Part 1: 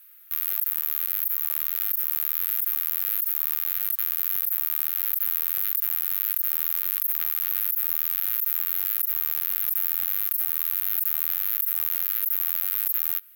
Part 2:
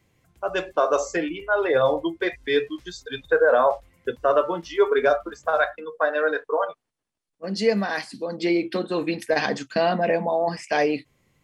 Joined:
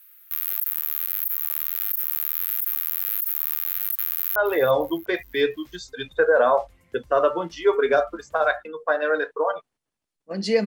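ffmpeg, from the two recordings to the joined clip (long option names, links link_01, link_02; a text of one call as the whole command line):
ffmpeg -i cue0.wav -i cue1.wav -filter_complex "[0:a]apad=whole_dur=10.66,atrim=end=10.66,atrim=end=4.362[link_01];[1:a]atrim=start=1.488:end=7.79[link_02];[link_01][link_02]acrossfade=duration=0.004:curve1=hsin:curve2=hsin,asplit=2[link_03][link_04];[link_04]afade=type=in:start_time=4.1:duration=0.01,afade=type=out:start_time=4.36:duration=0.01,aecho=0:1:350|700|1050|1400:0.188365|0.0847642|0.0381439|0.0171648[link_05];[link_03][link_05]amix=inputs=2:normalize=0" out.wav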